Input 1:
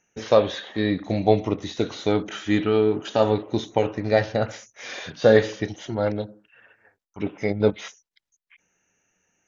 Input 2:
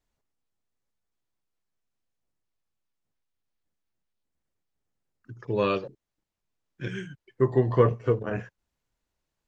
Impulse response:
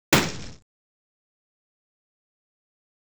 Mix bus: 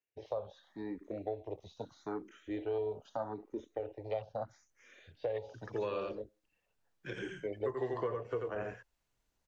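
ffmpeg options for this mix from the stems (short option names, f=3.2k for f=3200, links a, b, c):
-filter_complex "[0:a]afwtdn=0.0562,asplit=2[a][b];[b]afreqshift=0.79[c];[a][c]amix=inputs=2:normalize=1,volume=-6.5dB[d];[1:a]adelay=250,volume=-0.5dB,asplit=2[e][f];[f]volume=-4.5dB,aecho=0:1:87:1[g];[d][e][g]amix=inputs=3:normalize=0,acrossover=split=80|380|810[h][i][j][k];[h]acompressor=threshold=-53dB:ratio=4[l];[i]acompressor=threshold=-58dB:ratio=4[m];[j]acompressor=threshold=-34dB:ratio=4[n];[k]acompressor=threshold=-46dB:ratio=4[o];[l][m][n][o]amix=inputs=4:normalize=0,alimiter=level_in=1dB:limit=-24dB:level=0:latency=1:release=371,volume=-1dB"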